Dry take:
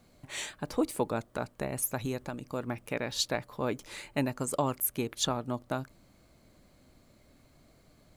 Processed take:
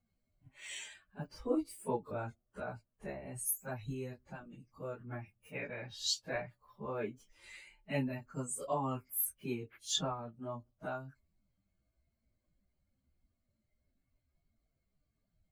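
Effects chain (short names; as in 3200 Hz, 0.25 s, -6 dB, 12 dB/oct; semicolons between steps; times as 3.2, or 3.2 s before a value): per-bin expansion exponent 1.5; plain phase-vocoder stretch 1.9×; gain -1.5 dB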